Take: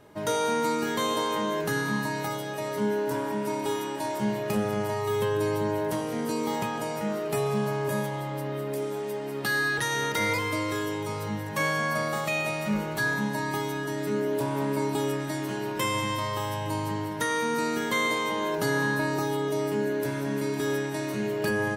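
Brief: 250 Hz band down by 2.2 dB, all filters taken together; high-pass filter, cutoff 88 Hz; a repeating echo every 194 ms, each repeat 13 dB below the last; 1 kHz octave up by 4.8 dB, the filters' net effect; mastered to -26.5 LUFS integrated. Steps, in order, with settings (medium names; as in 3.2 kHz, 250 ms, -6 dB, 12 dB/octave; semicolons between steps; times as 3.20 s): high-pass 88 Hz; peaking EQ 250 Hz -3 dB; peaking EQ 1 kHz +5.5 dB; feedback delay 194 ms, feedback 22%, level -13 dB; trim +0.5 dB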